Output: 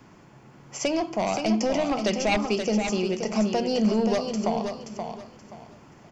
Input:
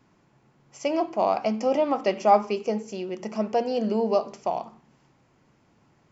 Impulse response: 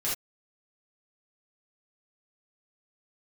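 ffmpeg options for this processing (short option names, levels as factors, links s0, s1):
-filter_complex "[0:a]bandreject=f=3900:w=13,aeval=exprs='0.473*sin(PI/2*2.24*val(0)/0.473)':c=same,acrossover=split=190|3000[s0][s1][s2];[s1]acompressor=threshold=0.0355:ratio=3[s3];[s0][s3][s2]amix=inputs=3:normalize=0,asplit=2[s4][s5];[s5]aecho=0:1:527|1054|1581:0.473|0.123|0.032[s6];[s4][s6]amix=inputs=2:normalize=0"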